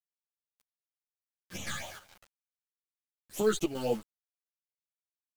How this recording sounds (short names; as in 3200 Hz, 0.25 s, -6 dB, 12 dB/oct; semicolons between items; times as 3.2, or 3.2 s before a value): phasing stages 8, 3.9 Hz, lowest notch 680–1600 Hz; a quantiser's noise floor 8-bit, dither none; chopped level 2.4 Hz, depth 65%, duty 75%; a shimmering, thickened sound